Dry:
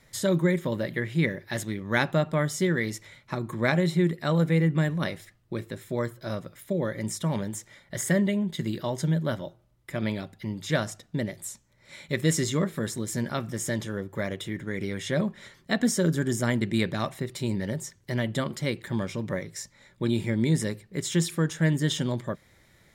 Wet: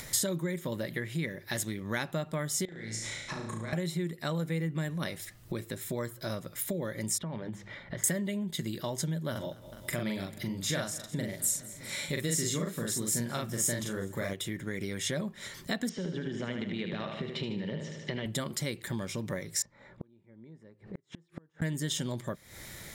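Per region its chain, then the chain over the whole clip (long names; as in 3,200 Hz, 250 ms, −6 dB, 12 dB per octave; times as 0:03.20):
0:02.65–0:03.73: low-pass filter 8,400 Hz 24 dB per octave + downward compressor 10 to 1, threshold −39 dBFS + flutter between parallel walls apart 6.1 metres, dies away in 0.7 s
0:07.18–0:08.04: mains-hum notches 50/100/150/200 Hz + downward compressor 3 to 1, threshold −35 dBFS + high-frequency loss of the air 330 metres
0:09.31–0:14.34: double-tracking delay 42 ms −2 dB + repeating echo 206 ms, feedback 58%, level −24 dB
0:15.89–0:18.26: loudspeaker in its box 130–3,700 Hz, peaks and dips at 180 Hz +8 dB, 450 Hz +7 dB, 2,900 Hz +8 dB + downward compressor, threshold −27 dBFS + repeating echo 76 ms, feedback 50%, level −6 dB
0:19.62–0:21.62: low-pass filter 1,000 Hz + spectral tilt +2 dB per octave + gate with flip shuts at −32 dBFS, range −41 dB
whole clip: downward compressor 3 to 1, threshold −42 dBFS; high-shelf EQ 5,200 Hz +11.5 dB; upward compression, threshold −44 dBFS; level +6 dB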